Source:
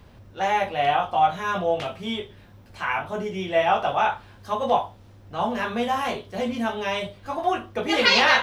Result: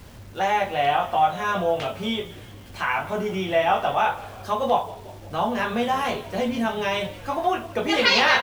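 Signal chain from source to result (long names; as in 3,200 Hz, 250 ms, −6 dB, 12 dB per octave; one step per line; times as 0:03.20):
in parallel at +2.5 dB: downward compressor, threshold −30 dBFS, peak gain reduction 15.5 dB
on the sum: bit-depth reduction 8 bits, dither none
echo with shifted repeats 175 ms, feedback 61%, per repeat −56 Hz, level −18.5 dB
level −2.5 dB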